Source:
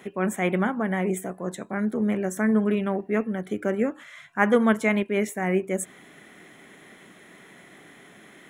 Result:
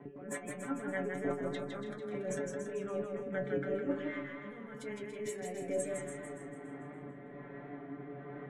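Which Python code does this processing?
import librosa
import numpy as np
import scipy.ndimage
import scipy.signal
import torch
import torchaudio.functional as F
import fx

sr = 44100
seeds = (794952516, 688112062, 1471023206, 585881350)

p1 = fx.env_lowpass(x, sr, base_hz=930.0, full_db=-20.5)
p2 = fx.lowpass(p1, sr, hz=1900.0, slope=6)
p3 = fx.over_compress(p2, sr, threshold_db=-33.0, ratio=-1.0)
p4 = fx.rotary_switch(p3, sr, hz=5.0, then_hz=1.2, switch_at_s=5.74)
p5 = fx.auto_swell(p4, sr, attack_ms=124.0)
p6 = fx.stiff_resonator(p5, sr, f0_hz=140.0, decay_s=0.24, stiffness=0.002)
p7 = p6 + fx.echo_feedback(p6, sr, ms=285, feedback_pct=31, wet_db=-9.0, dry=0)
p8 = fx.echo_warbled(p7, sr, ms=161, feedback_pct=32, rate_hz=2.8, cents=74, wet_db=-4.5)
y = p8 * librosa.db_to_amplitude(9.0)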